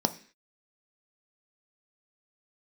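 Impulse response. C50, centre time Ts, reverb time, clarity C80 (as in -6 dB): 16.5 dB, 5 ms, 0.45 s, 20.5 dB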